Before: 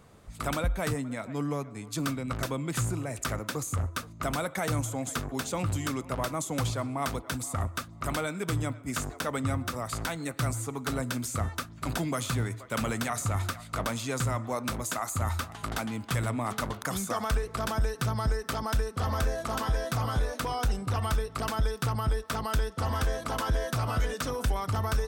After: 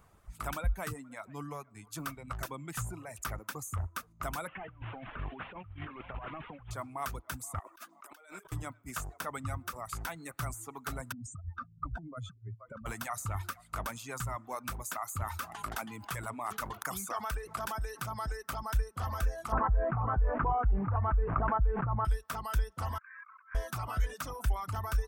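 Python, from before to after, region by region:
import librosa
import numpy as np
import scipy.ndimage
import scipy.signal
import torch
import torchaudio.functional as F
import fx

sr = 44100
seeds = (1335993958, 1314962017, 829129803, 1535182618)

y = fx.chain(x, sr, fx.delta_mod(bps=16000, step_db=-41.5),
    fx.high_shelf(hz=2500.0, db=10.0),
    fx.over_compress(threshold_db=-34.0, ratio=-0.5), at=(4.47, 6.71))
y = fx.chain(y, sr, fx.highpass(hz=290.0, slope=24),
    fx.low_shelf(hz=370.0, db=-3.0),
    fx.over_compress(threshold_db=-45.0, ratio=-1.0), at=(7.59, 8.52))
y = fx.chain(y, sr, fx.spec_expand(power=2.6),
    fx.over_compress(threshold_db=-33.0, ratio=-0.5),
    fx.air_absorb(metres=61.0), at=(11.12, 12.86))
y = fx.chain(y, sr, fx.low_shelf(hz=96.0, db=-12.0),
    fx.env_flatten(amount_pct=50), at=(15.23, 18.42))
y = fx.chain(y, sr, fx.delta_mod(bps=64000, step_db=-40.5),
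    fx.gaussian_blur(sigma=5.9),
    fx.env_flatten(amount_pct=100), at=(19.52, 22.05))
y = fx.chain(y, sr, fx.ellip_bandpass(low_hz=1100.0, high_hz=2300.0, order=3, stop_db=40),
    fx.over_compress(threshold_db=-48.0, ratio=-1.0), at=(22.98, 23.55))
y = fx.graphic_eq(y, sr, hz=(125, 250, 500, 2000, 4000, 8000), db=(-7, -9, -9, -4, -9, -5))
y = fx.dereverb_blind(y, sr, rt60_s=0.73)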